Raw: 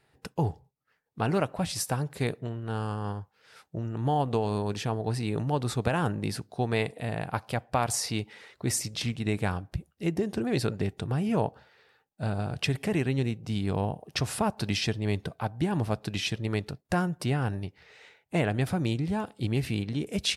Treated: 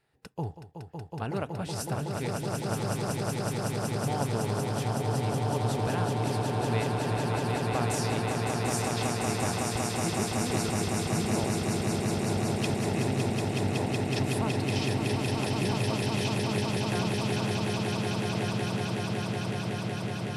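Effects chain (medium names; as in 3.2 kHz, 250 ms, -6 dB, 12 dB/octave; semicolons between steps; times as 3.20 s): fade out at the end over 4.22 s; echo with a slow build-up 186 ms, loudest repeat 8, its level -4 dB; trim -6.5 dB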